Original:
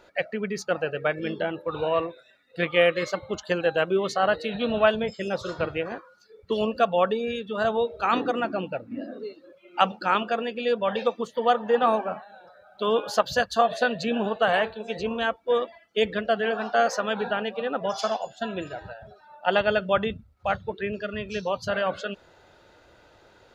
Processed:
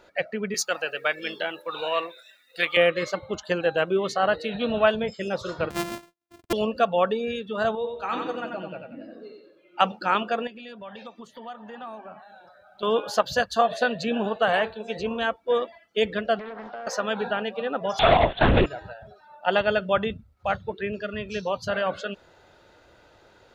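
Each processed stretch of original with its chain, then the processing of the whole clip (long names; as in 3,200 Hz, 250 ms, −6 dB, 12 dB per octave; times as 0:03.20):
0:00.54–0:02.77: high-pass filter 150 Hz + spectral tilt +4.5 dB per octave
0:05.70–0:06.53: samples sorted by size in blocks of 128 samples + noise gate −52 dBFS, range −31 dB
0:07.75–0:09.80: tuned comb filter 160 Hz, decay 0.19 s, mix 70% + repeating echo 91 ms, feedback 37%, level −4.5 dB
0:10.47–0:12.83: parametric band 480 Hz −11 dB 0.23 octaves + downward compressor 2.5 to 1, threshold −43 dBFS
0:16.39–0:16.87: downward compressor 8 to 1, threshold −33 dBFS + high-frequency loss of the air 240 metres + highs frequency-modulated by the lows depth 0.56 ms
0:17.99–0:18.66: leveller curve on the samples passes 5 + linear-prediction vocoder at 8 kHz whisper + highs frequency-modulated by the lows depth 0.16 ms
whole clip: no processing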